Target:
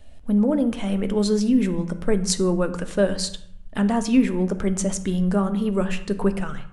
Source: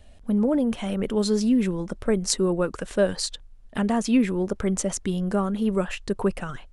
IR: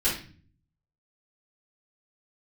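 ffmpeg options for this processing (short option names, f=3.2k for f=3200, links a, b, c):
-filter_complex "[0:a]asplit=2[a][b];[1:a]atrim=start_sample=2205,asetrate=24255,aresample=44100,lowshelf=f=370:g=5.5[c];[b][c]afir=irnorm=-1:irlink=0,volume=-25dB[d];[a][d]amix=inputs=2:normalize=0"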